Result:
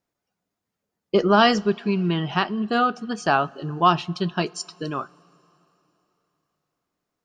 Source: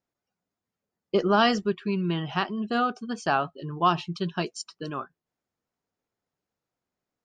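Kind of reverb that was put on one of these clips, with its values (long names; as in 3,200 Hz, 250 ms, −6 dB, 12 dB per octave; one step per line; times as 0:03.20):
coupled-rooms reverb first 0.25 s, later 3.5 s, from −18 dB, DRR 18 dB
level +4.5 dB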